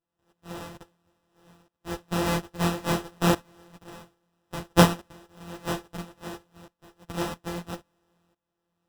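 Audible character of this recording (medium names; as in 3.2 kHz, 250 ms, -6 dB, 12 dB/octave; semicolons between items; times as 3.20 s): a buzz of ramps at a fixed pitch in blocks of 256 samples; tremolo saw up 0.6 Hz, depth 90%; aliases and images of a low sample rate 2.2 kHz, jitter 0%; a shimmering, thickened sound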